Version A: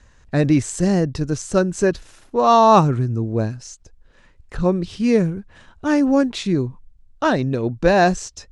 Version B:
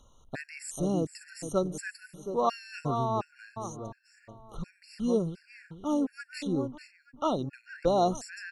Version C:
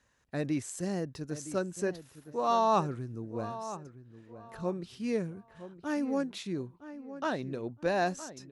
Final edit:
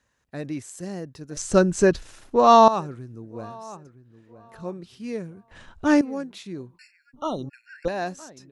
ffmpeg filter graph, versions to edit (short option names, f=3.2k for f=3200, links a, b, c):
-filter_complex "[0:a]asplit=2[a][b];[2:a]asplit=4[c][d][e][f];[c]atrim=end=1.372[g];[a]atrim=start=1.368:end=2.682[h];[d]atrim=start=2.678:end=5.512[i];[b]atrim=start=5.508:end=6.012[j];[e]atrim=start=6.008:end=6.792[k];[1:a]atrim=start=6.788:end=7.882[l];[f]atrim=start=7.878[m];[g][h]acrossfade=d=0.004:c1=hsin:c2=hsin[n];[n][i]acrossfade=d=0.004:c1=hsin:c2=hsin[o];[o][j]acrossfade=d=0.004:c1=hsin:c2=hsin[p];[p][k]acrossfade=d=0.004:c1=hsin:c2=hsin[q];[q][l]acrossfade=d=0.004:c1=hsin:c2=hsin[r];[r][m]acrossfade=d=0.004:c1=hsin:c2=hsin"